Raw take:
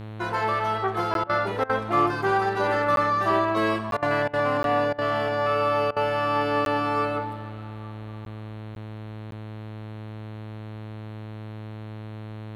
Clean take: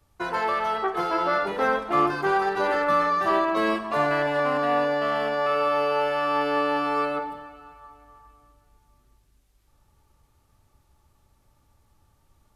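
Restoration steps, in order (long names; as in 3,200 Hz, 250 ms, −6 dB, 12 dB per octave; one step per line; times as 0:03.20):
hum removal 107.9 Hz, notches 40
repair the gap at 0:01.14/0:02.96/0:03.91/0:04.63/0:06.65/0:08.25/0:08.75/0:09.31, 12 ms
repair the gap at 0:01.24/0:01.64/0:03.97/0:04.28/0:04.93/0:05.91, 53 ms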